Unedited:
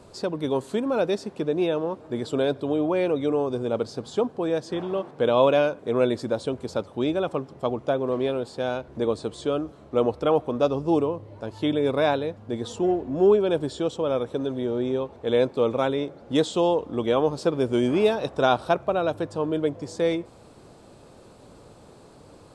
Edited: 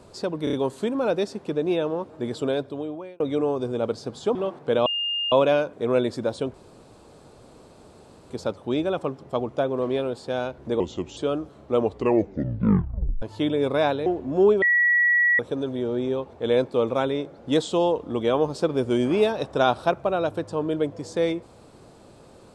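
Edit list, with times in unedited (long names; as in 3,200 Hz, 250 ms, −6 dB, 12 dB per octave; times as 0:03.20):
0:00.44: stutter 0.03 s, 4 plays
0:02.30–0:03.11: fade out
0:04.26–0:04.87: remove
0:05.38: insert tone 2,820 Hz −23.5 dBFS 0.46 s
0:06.60: splice in room tone 1.76 s
0:09.10–0:09.40: play speed 81%
0:10.01: tape stop 1.44 s
0:12.29–0:12.89: remove
0:13.45–0:14.22: beep over 1,930 Hz −16 dBFS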